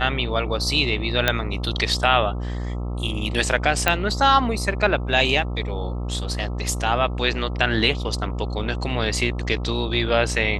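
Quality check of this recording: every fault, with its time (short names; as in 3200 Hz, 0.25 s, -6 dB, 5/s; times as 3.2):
buzz 60 Hz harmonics 22 -27 dBFS
1.28 pop -3 dBFS
3.88 pop -3 dBFS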